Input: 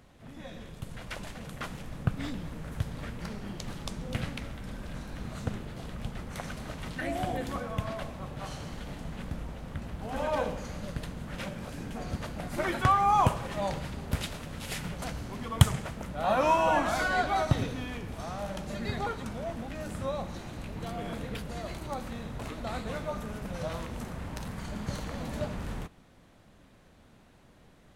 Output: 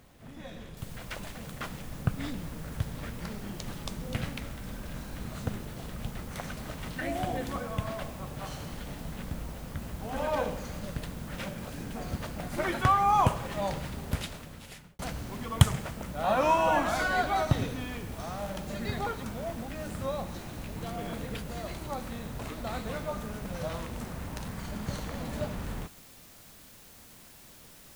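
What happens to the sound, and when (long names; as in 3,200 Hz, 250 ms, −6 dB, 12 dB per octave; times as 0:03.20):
0:00.77: noise floor change −69 dB −54 dB
0:14.07–0:14.99: fade out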